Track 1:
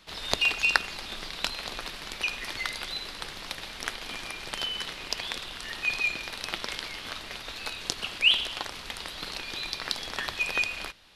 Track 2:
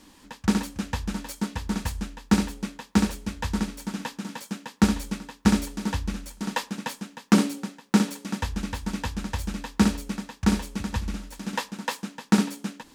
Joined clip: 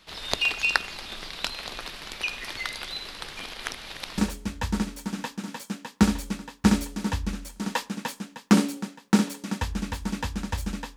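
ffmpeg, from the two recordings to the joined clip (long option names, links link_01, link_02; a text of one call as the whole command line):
ffmpeg -i cue0.wav -i cue1.wav -filter_complex "[0:a]apad=whole_dur=10.96,atrim=end=10.96,asplit=2[link_01][link_02];[link_01]atrim=end=3.372[link_03];[link_02]atrim=start=3.368:end=4.182,asetpts=PTS-STARTPTS,areverse[link_04];[1:a]atrim=start=2.988:end=9.77[link_05];[link_03][link_04]acrossfade=duration=0.004:curve1=hsin:curve2=hsin[link_06];[link_06][link_05]acrossfade=duration=0.004:curve1=hsin:curve2=hsin" out.wav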